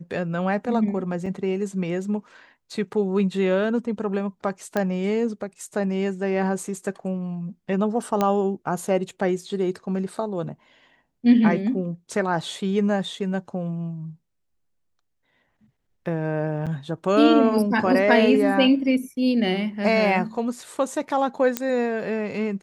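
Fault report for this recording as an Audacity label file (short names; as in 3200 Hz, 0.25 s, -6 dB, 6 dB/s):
1.260000	1.260000	gap 4.5 ms
4.770000	4.770000	pop -11 dBFS
8.210000	8.210000	pop -9 dBFS
16.660000	16.670000	gap 7.3 ms
21.570000	21.570000	pop -6 dBFS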